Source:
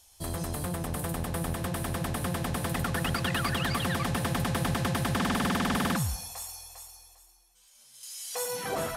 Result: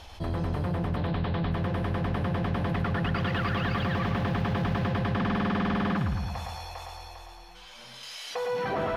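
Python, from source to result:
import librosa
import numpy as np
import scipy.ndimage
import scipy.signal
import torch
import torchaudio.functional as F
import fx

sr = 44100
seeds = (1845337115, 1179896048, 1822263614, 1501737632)

p1 = fx.high_shelf_res(x, sr, hz=5700.0, db=-13.0, q=3.0, at=(0.96, 1.52))
p2 = fx.quant_dither(p1, sr, seeds[0], bits=6, dither='none', at=(3.19, 4.88))
p3 = 10.0 ** (-23.5 / 20.0) * np.tanh(p2 / 10.0 ** (-23.5 / 20.0))
p4 = fx.air_absorb(p3, sr, metres=320.0)
p5 = p4 + fx.echo_feedback(p4, sr, ms=110, feedback_pct=40, wet_db=-5.5, dry=0)
p6 = fx.env_flatten(p5, sr, amount_pct=50)
y = p6 * librosa.db_to_amplitude(1.5)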